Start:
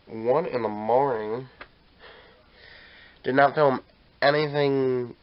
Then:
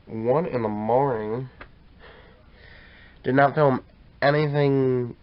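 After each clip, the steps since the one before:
bass and treble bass +9 dB, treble −9 dB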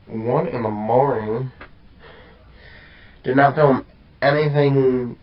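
micro pitch shift up and down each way 28 cents
level +7.5 dB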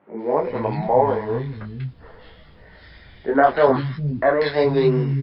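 three-band delay without the direct sound mids, highs, lows 190/410 ms, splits 220/1,900 Hz

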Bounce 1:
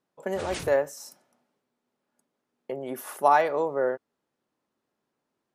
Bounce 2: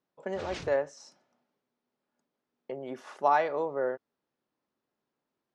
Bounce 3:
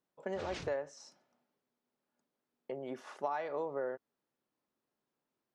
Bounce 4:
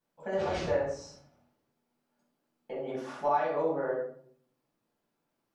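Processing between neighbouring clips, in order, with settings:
low-pass filter 6,000 Hz 24 dB per octave; level −4.5 dB
downward compressor 10 to 1, threshold −29 dBFS, peak gain reduction 10.5 dB; level −3 dB
rectangular room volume 760 cubic metres, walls furnished, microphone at 8.1 metres; level −3.5 dB

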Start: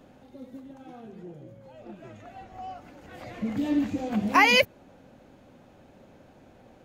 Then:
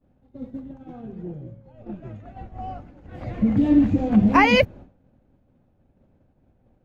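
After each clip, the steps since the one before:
downward expander −41 dBFS
RIAA equalisation playback
level +3 dB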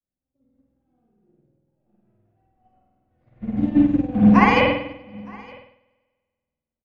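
single-tap delay 915 ms −10 dB
convolution reverb RT60 1.6 s, pre-delay 48 ms, DRR −5 dB
expander for the loud parts 2.5 to 1, over −29 dBFS
level −1.5 dB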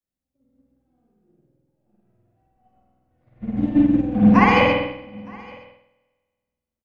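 single-tap delay 128 ms −7.5 dB

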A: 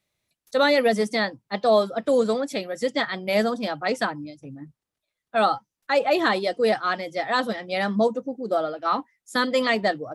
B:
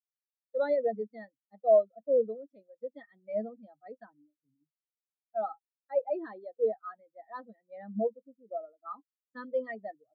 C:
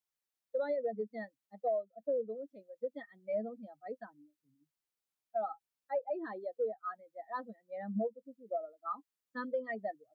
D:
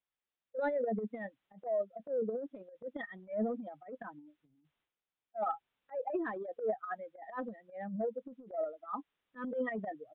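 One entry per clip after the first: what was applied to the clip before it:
every bin expanded away from the loudest bin 2.5 to 1; level −5.5 dB
downward compressor 8 to 1, threshold −35 dBFS, peak gain reduction 17 dB; level +3.5 dB
transient designer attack −12 dB, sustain +11 dB; downsampling to 8,000 Hz; level +1 dB

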